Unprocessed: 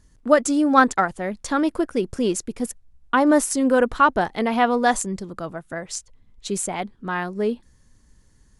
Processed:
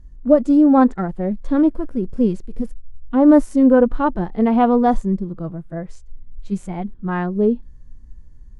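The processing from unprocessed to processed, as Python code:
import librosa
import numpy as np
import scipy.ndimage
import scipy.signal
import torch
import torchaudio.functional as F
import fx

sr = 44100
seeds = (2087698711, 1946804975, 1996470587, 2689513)

y = fx.hpss(x, sr, part='percussive', gain_db=-16)
y = fx.tilt_eq(y, sr, slope=-3.5)
y = y * 10.0 ** (1.0 / 20.0)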